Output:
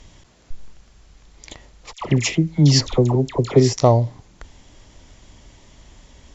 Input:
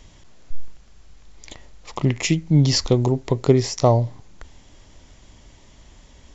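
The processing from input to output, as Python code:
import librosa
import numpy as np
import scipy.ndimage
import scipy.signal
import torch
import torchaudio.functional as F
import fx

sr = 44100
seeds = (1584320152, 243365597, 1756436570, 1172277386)

y = fx.dispersion(x, sr, late='lows', ms=80.0, hz=1200.0, at=(1.93, 3.73))
y = fx.cheby_harmonics(y, sr, harmonics=(3,), levels_db=(-42,), full_scale_db=-3.0)
y = y * 10.0 ** (2.0 / 20.0)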